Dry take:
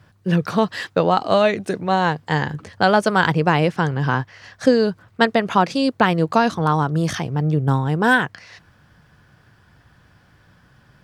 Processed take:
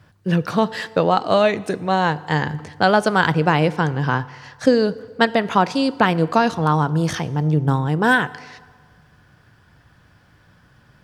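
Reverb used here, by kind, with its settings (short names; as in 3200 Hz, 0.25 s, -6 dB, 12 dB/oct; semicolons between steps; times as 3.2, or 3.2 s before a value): FDN reverb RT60 1.6 s, low-frequency decay 0.8×, high-frequency decay 0.75×, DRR 17 dB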